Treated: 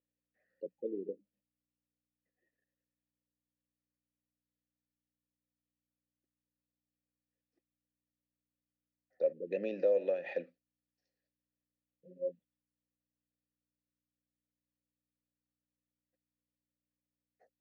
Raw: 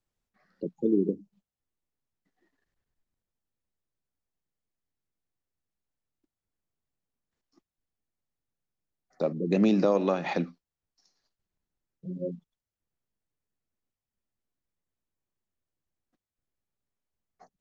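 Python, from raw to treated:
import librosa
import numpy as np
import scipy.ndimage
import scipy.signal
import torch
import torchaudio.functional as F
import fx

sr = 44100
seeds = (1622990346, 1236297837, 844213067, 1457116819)

y = fx.add_hum(x, sr, base_hz=60, snr_db=31)
y = fx.vowel_filter(y, sr, vowel='e')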